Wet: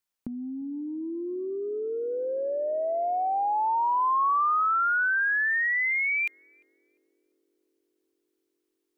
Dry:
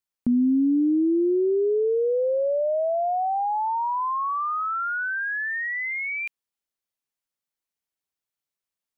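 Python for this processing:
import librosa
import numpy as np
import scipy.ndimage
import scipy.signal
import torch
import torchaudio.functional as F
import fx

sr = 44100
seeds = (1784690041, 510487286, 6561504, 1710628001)

y = fx.peak_eq(x, sr, hz=92.0, db=-3.5, octaves=1.6)
y = fx.over_compress(y, sr, threshold_db=-26.0, ratio=-0.5)
y = fx.echo_banded(y, sr, ms=348, feedback_pct=84, hz=330.0, wet_db=-20)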